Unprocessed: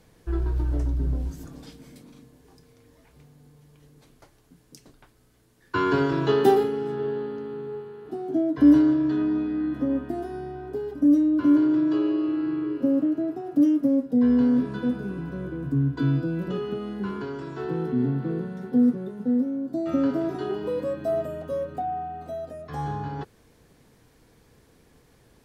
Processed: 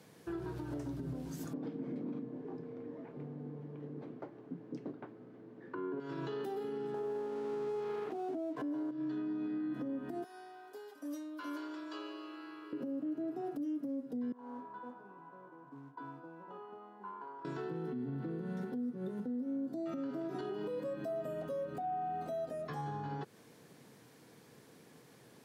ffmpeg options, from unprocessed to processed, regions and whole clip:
-filter_complex "[0:a]asettb=1/sr,asplit=3[s0][s1][s2];[s0]atrim=end=1.534[s3];[s1]atrim=start=1.53:end=6,asetpts=PTS-STARTPTS,afade=t=in:d=0.004:c=qsin,afade=t=out:st=4.466:d=0.004:c=qsin,lowpass=1900,equalizer=f=330:w=0.5:g=14[s4];[s2]atrim=start=5.996[s5];[s3][s4]acrossfade=d=0.004:c1=hsin:c2=qsin[s6];[s6][s5]acrossfade=d=0.004:c1=qsin:c2=hsin,asettb=1/sr,asplit=3[s7][s8][s9];[s7]atrim=end=6.944[s10];[s8]atrim=start=6.94:end=8.91,asetpts=PTS-STARTPTS,afade=t=in:d=0.004:c=qsin,afade=t=out:st=1.966:d=0.004:c=qsin,equalizer=f=700:w=0.54:g=15,aeval=exprs='sgn(val(0))*max(abs(val(0))-0.00944,0)':c=same[s11];[s9]atrim=start=8.906[s12];[s10][s11]acrossfade=d=0.004:c1=hsin:c2=qsin[s13];[s13][s12]acrossfade=d=0.004:c1=qsin:c2=hsin,asettb=1/sr,asplit=3[s14][s15][s16];[s14]atrim=end=10.244[s17];[s15]atrim=start=10.24:end=12.73,asetpts=PTS-STARTPTS,afade=t=in:d=0.004:c=qsin,afade=t=out:st=2.486:d=0.004:c=qsin,highpass=1200,equalizer=f=2000:t=o:w=1.7:g=-6.5[s18];[s16]atrim=start=12.726[s19];[s17][s18]acrossfade=d=0.004:c1=hsin:c2=qsin[s20];[s20][s19]acrossfade=d=0.004:c1=qsin:c2=hsin,asettb=1/sr,asplit=3[s21][s22][s23];[s21]atrim=end=14.324[s24];[s22]atrim=start=14.32:end=17.45,asetpts=PTS-STARTPTS,afade=t=in:d=0.004:c=qsin,afade=t=out:st=3.126:d=0.004:c=qsin,acrusher=bits=8:mode=log:mix=0:aa=0.000001,bandpass=f=920:t=q:w=6.3[s25];[s23]atrim=start=17.446[s26];[s24][s25]acrossfade=d=0.004:c1=hsin:c2=qsin[s27];[s27][s26]acrossfade=d=0.004:c1=qsin:c2=hsin,highpass=f=130:w=0.5412,highpass=f=130:w=1.3066,acompressor=threshold=0.0355:ratio=6,alimiter=level_in=2.51:limit=0.0631:level=0:latency=1:release=176,volume=0.398"

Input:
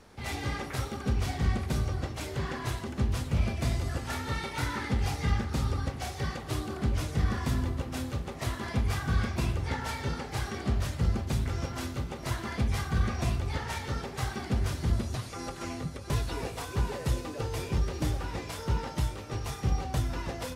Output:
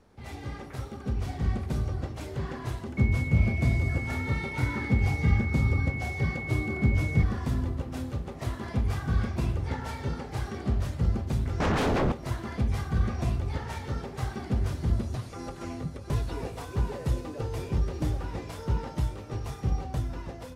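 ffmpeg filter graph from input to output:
-filter_complex "[0:a]asettb=1/sr,asplit=3[s0][s1][s2];[s0]atrim=end=2.974[s3];[s1]atrim=start=2.97:end=7.23,asetpts=PTS-STARTPTS,afade=t=in:d=0.004:c=qsin,afade=t=out:st=4.256:d=0.004:c=qsin,highpass=70,lowshelf=f=300:g=7.5,aeval=exprs='val(0)+0.0316*sin(2*PI*2200*n/s)':c=same[s4];[s2]atrim=start=7.226[s5];[s3][s4]acrossfade=d=0.004:c1=hsin:c2=qsin[s6];[s6][s5]acrossfade=d=0.004:c1=qsin:c2=hsin,asettb=1/sr,asplit=3[s7][s8][s9];[s7]atrim=end=11.604[s10];[s8]atrim=start=11.6:end=12.12,asetpts=PTS-STARTPTS,afade=t=in:d=0.004:c=qsin,afade=t=out:st=0.516:d=0.004:c=qsin,lowpass=f=1600:p=1,aeval=exprs='0.0841*sin(PI/2*7.94*val(0)/0.0841)':c=same[s11];[s9]atrim=start=12.116[s12];[s10][s11]acrossfade=d=0.004:c1=hsin:c2=qsin[s13];[s13][s12]acrossfade=d=0.004:c1=qsin:c2=hsin,tiltshelf=f=1100:g=4,dynaudnorm=f=520:g=5:m=1.78,volume=0.422"

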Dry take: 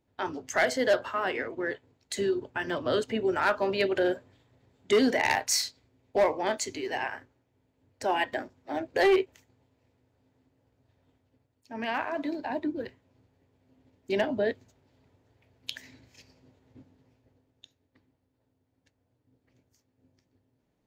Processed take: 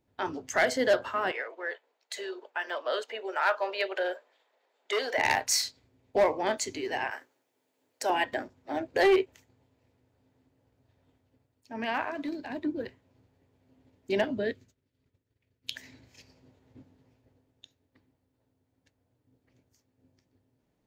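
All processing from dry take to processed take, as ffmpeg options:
-filter_complex "[0:a]asettb=1/sr,asplit=3[s0][s1][s2];[s0]atrim=end=1.314[s3];[s1]atrim=start=1.31:end=5.18,asetpts=PTS-STARTPTS,afade=t=in:d=0.004:c=qsin,afade=t=out:st=3.866:d=0.004:c=qsin,highpass=f=520:w=0.5412,highpass=f=520:w=1.3066,equalizer=f=9000:w=0.74:g=-6.5[s4];[s2]atrim=start=5.176[s5];[s3][s4]acrossfade=d=0.004:c1=hsin:c2=qsin[s6];[s6][s5]acrossfade=d=0.004:c1=qsin:c2=hsin,asettb=1/sr,asplit=3[s7][s8][s9];[s7]atrim=end=7.114[s10];[s8]atrim=start=7.11:end=8.1,asetpts=PTS-STARTPTS,afade=t=in:d=0.004:c=qsin,afade=t=out:st=0.986:d=0.004:c=qsin,highpass=380,highshelf=f=5000:g=11[s11];[s9]atrim=start=8.096[s12];[s10][s11]acrossfade=d=0.004:c1=hsin:c2=qsin[s13];[s13][s12]acrossfade=d=0.004:c1=qsin:c2=hsin,asettb=1/sr,asplit=3[s14][s15][s16];[s14]atrim=end=12.114[s17];[s15]atrim=start=12.11:end=12.65,asetpts=PTS-STARTPTS,afade=t=in:d=0.004:c=qsin,afade=t=out:st=0.536:d=0.004:c=qsin,equalizer=f=750:t=o:w=1.5:g=-7.5,bandreject=f=920:w=23,asoftclip=type=hard:threshold=0.0376[s18];[s16]atrim=start=12.646[s19];[s17][s18]acrossfade=d=0.004:c1=hsin:c2=qsin[s20];[s20][s19]acrossfade=d=0.004:c1=qsin:c2=hsin,asettb=1/sr,asplit=3[s21][s22][s23];[s21]atrim=end=14.244[s24];[s22]atrim=start=14.24:end=15.75,asetpts=PTS-STARTPTS,afade=t=in:d=0.004:c=qsin,afade=t=out:st=1.506:d=0.004:c=qsin,agate=range=0.0224:threshold=0.00126:ratio=3:release=100:detection=peak,equalizer=f=800:t=o:w=0.9:g=-11[s25];[s23]atrim=start=15.746[s26];[s24][s25]acrossfade=d=0.004:c1=hsin:c2=qsin[s27];[s27][s26]acrossfade=d=0.004:c1=qsin:c2=hsin"

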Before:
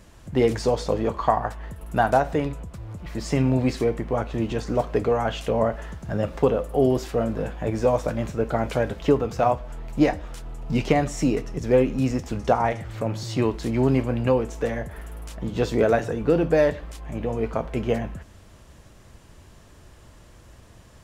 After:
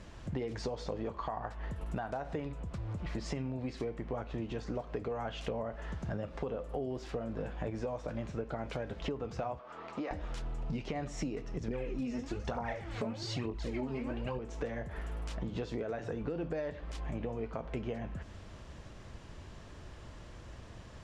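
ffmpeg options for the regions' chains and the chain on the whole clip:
-filter_complex "[0:a]asettb=1/sr,asplit=3[s0][s1][s2];[s0]atrim=end=9.594[s3];[s1]atrim=start=9.59:end=10.11,asetpts=PTS-STARTPTS,afade=t=in:d=0.004:c=qsin,afade=t=out:st=0.516:d=0.004:c=qsin,highpass=330,lowpass=5700,equalizer=f=1200:t=o:w=0.28:g=13,acompressor=threshold=0.0282:ratio=4:attack=3.2:release=140:knee=1:detection=peak[s4];[s2]atrim=start=10.106[s5];[s3][s4]acrossfade=d=0.004:c1=hsin:c2=qsin[s6];[s6][s5]acrossfade=d=0.004:c1=qsin:c2=hsin,asettb=1/sr,asplit=3[s7][s8][s9];[s7]atrim=end=11.684[s10];[s8]atrim=start=11.68:end=14.39,asetpts=PTS-STARTPTS,afade=t=in:d=0.004:c=qsin,afade=t=out:st=2.706:d=0.004:c=qsin,aecho=1:1:72:0.178,atrim=end_sample=119511,aphaser=in_gain=1:out_gain=1:delay=4.9:decay=0.7:speed=1.1:type=triangular,asplit=2[s11][s12];[s12]adelay=21,volume=0.447[s13];[s11][s13]amix=inputs=2:normalize=0,atrim=end_sample=119511[s14];[s9]atrim=start=14.386[s15];[s10][s14]acrossfade=d=0.004:c1=hsin:c2=qsin[s16];[s16][s15]acrossfade=d=0.004:c1=qsin:c2=hsin,lowpass=5500,alimiter=limit=0.224:level=0:latency=1:release=124,acompressor=threshold=0.0178:ratio=6"

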